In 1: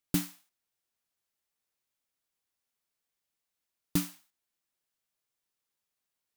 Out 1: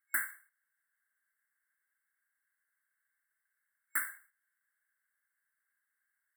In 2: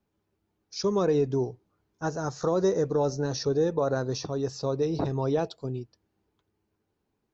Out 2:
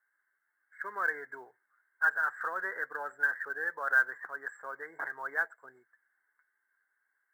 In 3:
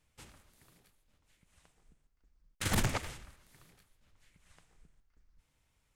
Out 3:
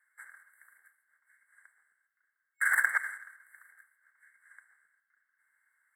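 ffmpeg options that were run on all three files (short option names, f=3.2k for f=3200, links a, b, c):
-af "afftfilt=real='re*(1-between(b*sr/4096,2200,7500))':imag='im*(1-between(b*sr/4096,2200,7500))':win_size=4096:overlap=0.75,highpass=f=1.6k:t=q:w=11,acrusher=bits=8:mode=log:mix=0:aa=0.000001"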